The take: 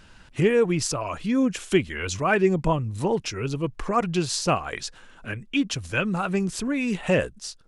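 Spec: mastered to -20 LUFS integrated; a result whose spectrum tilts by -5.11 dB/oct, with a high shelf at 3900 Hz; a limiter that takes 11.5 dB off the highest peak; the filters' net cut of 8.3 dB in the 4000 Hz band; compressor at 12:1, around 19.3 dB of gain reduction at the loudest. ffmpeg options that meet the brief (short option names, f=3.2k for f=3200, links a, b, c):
-af "highshelf=f=3.9k:g=-5.5,equalizer=f=4k:t=o:g=-8,acompressor=threshold=-35dB:ratio=12,volume=23.5dB,alimiter=limit=-11dB:level=0:latency=1"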